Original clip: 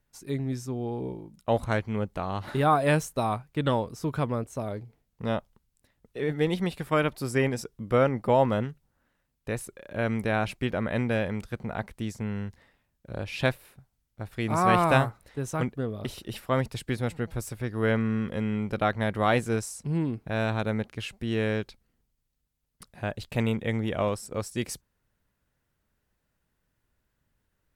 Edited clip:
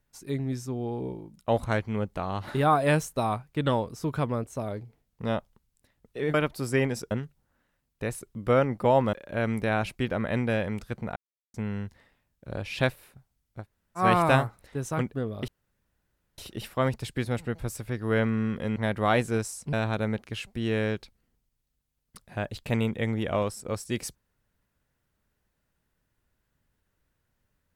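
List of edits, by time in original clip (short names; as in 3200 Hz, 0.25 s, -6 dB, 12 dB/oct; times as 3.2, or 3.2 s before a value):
6.34–6.96 cut
7.73–8.57 move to 9.75
11.78–12.16 mute
14.24–14.62 room tone, crossfade 0.10 s
16.1 insert room tone 0.90 s
18.48–18.94 cut
19.91–20.39 cut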